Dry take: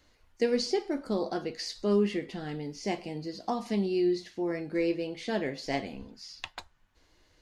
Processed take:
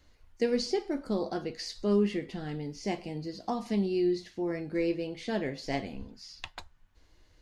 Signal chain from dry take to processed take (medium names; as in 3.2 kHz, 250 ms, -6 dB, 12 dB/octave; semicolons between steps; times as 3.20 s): bass shelf 130 Hz +9 dB; trim -2 dB